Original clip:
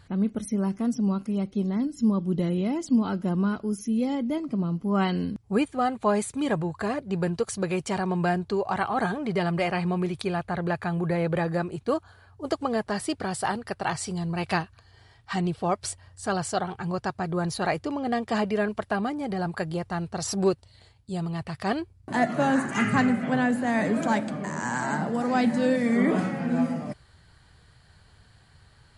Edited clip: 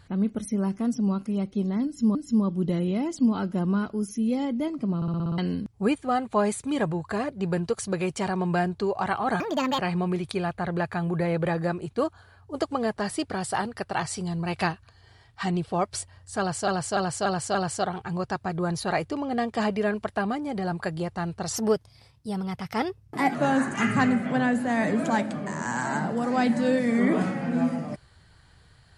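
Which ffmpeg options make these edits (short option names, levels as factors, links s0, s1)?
-filter_complex "[0:a]asplit=17[s0][s1][s2][s3][s4][s5][s6][s7][s8][s9][s10][s11][s12][s13][s14][s15][s16];[s0]atrim=end=2.152[s17];[s1]atrim=start=1.848:end=4.722[s18];[s2]atrim=start=4.658:end=4.722[s19];[s3]atrim=start=4.658:end=4.722[s20];[s4]atrim=start=4.658:end=4.722[s21];[s5]atrim=start=4.658:end=4.722[s22];[s6]atrim=start=4.658:end=4.722[s23];[s7]atrim=start=4.658:end=4.722[s24];[s8]atrim=start=5.078:end=9.104[s25];[s9]atrim=start=9.1:end=9.69,asetpts=PTS-STARTPTS,asetrate=67032,aresample=44100[s26];[s10]atrim=start=9.686:end=16.582[s27];[s11]atrim=start=16.288:end=16.582[s28];[s12]atrim=start=16.288:end=16.582[s29];[s13]atrim=start=16.288:end=16.582[s30];[s14]atrim=start=16.288:end=20.304[s31];[s15]atrim=start=20.3:end=22.32,asetpts=PTS-STARTPTS,asetrate=49833,aresample=44100[s32];[s16]atrim=start=22.316[s33];[s17][s18]acrossfade=d=0.004:c1=hsin:c2=hsin[s34];[s34][s19]acrossfade=d=0.004:c1=hsin:c2=hsin[s35];[s35][s20]acrossfade=d=0.004:c1=hsin:c2=hsin[s36];[s36][s21]acrossfade=d=0.004:c1=hsin:c2=hsin[s37];[s37][s22]acrossfade=d=0.004:c1=hsin:c2=hsin[s38];[s38][s23]acrossfade=d=0.004:c1=hsin:c2=hsin[s39];[s39][s24]acrossfade=d=0.004:c1=hsin:c2=hsin[s40];[s40][s25]acrossfade=d=0.004:c1=hsin:c2=hsin[s41];[s41][s26]acrossfade=d=0.004:c1=hsin:c2=hsin[s42];[s42][s27]acrossfade=d=0.004:c1=hsin:c2=hsin[s43];[s43][s28]acrossfade=d=0.004:c1=hsin:c2=hsin[s44];[s44][s29]acrossfade=d=0.004:c1=hsin:c2=hsin[s45];[s45][s30]acrossfade=d=0.004:c1=hsin:c2=hsin[s46];[s46][s31]acrossfade=d=0.004:c1=hsin:c2=hsin[s47];[s47][s32]acrossfade=d=0.004:c1=hsin:c2=hsin[s48];[s48][s33]acrossfade=d=0.004:c1=hsin:c2=hsin"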